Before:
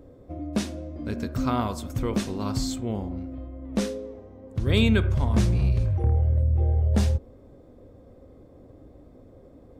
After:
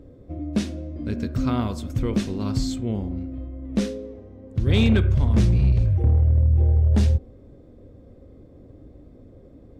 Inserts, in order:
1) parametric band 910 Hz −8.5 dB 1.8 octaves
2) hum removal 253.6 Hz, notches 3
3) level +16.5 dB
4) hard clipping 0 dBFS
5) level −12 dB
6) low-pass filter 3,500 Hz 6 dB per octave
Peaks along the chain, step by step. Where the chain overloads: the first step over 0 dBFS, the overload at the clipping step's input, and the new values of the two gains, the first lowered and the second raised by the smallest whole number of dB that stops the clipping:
−9.5, −9.5, +7.0, 0.0, −12.0, −12.0 dBFS
step 3, 7.0 dB
step 3 +9.5 dB, step 5 −5 dB

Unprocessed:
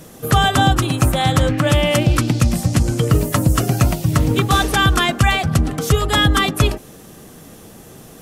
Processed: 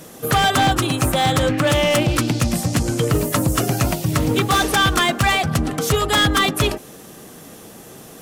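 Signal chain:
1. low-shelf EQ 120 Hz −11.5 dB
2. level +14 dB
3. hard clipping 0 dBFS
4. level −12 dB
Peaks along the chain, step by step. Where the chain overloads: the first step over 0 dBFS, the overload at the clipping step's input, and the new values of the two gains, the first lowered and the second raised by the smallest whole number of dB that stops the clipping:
−4.5, +9.5, 0.0, −12.0 dBFS
step 2, 9.5 dB
step 2 +4 dB, step 4 −2 dB

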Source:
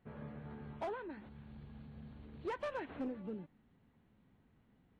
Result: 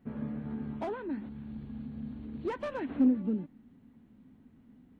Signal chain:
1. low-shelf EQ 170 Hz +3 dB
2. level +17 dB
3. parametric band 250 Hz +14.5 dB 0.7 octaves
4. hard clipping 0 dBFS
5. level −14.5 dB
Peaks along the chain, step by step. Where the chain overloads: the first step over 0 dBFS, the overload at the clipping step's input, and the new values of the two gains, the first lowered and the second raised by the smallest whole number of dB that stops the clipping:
−32.5, −15.5, −2.5, −2.5, −17.0 dBFS
no step passes full scale

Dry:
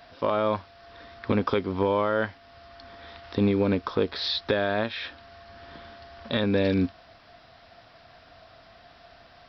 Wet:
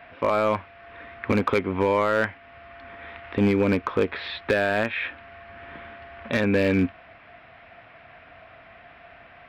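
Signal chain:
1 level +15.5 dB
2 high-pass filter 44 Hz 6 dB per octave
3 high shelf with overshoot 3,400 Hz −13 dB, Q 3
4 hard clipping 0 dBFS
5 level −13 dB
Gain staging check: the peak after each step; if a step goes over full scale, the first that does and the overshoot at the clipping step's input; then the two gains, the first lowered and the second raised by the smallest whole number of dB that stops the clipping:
+4.5, +5.5, +7.5, 0.0, −13.0 dBFS
step 1, 7.5 dB
step 1 +7.5 dB, step 5 −5 dB

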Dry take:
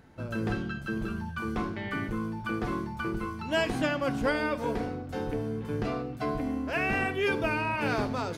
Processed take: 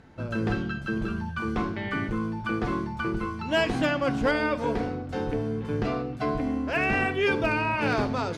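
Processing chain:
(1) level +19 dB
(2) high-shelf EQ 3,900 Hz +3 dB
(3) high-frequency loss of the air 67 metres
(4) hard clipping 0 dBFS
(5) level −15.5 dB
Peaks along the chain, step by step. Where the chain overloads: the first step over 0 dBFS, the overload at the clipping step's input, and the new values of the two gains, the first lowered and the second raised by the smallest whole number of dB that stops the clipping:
+3.5, +4.0, +3.5, 0.0, −15.5 dBFS
step 1, 3.5 dB
step 1 +15 dB, step 5 −11.5 dB

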